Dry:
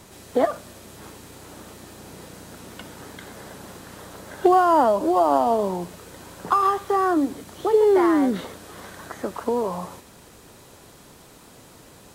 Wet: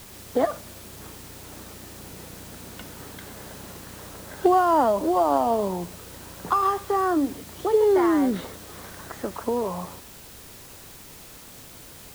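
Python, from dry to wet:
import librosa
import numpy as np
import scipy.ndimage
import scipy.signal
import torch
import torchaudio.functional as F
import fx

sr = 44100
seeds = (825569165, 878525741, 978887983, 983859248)

p1 = fx.low_shelf(x, sr, hz=91.0, db=10.0)
p2 = fx.quant_dither(p1, sr, seeds[0], bits=6, dither='triangular')
p3 = p1 + (p2 * librosa.db_to_amplitude(-3.5))
y = p3 * librosa.db_to_amplitude(-7.0)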